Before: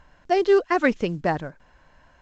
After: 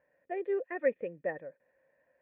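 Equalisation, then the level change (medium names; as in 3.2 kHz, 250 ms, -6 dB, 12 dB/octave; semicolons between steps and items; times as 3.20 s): cascade formant filter e; high-pass 150 Hz 12 dB/octave; distance through air 53 m; -1.5 dB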